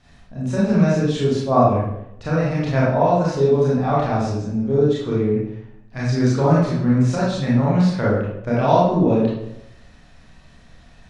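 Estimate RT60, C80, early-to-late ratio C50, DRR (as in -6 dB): 0.80 s, 4.5 dB, -0.5 dB, -7.5 dB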